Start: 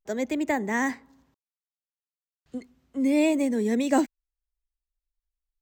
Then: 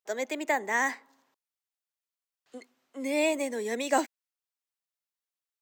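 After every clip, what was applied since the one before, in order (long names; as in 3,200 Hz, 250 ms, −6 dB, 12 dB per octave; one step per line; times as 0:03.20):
high-pass filter 560 Hz 12 dB per octave
level +1.5 dB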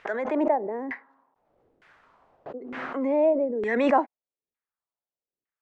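auto-filter low-pass saw down 1.1 Hz 350–2,000 Hz
background raised ahead of every attack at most 33 dB per second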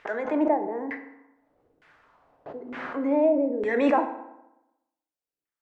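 feedback delay network reverb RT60 0.91 s, low-frequency decay 1.05×, high-frequency decay 0.65×, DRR 6.5 dB
level −1.5 dB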